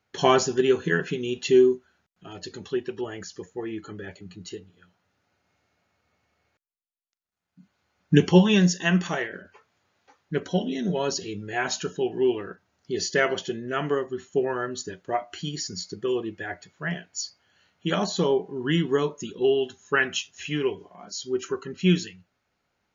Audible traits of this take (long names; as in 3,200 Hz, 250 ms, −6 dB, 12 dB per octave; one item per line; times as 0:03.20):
background noise floor −77 dBFS
spectral slope −5.0 dB per octave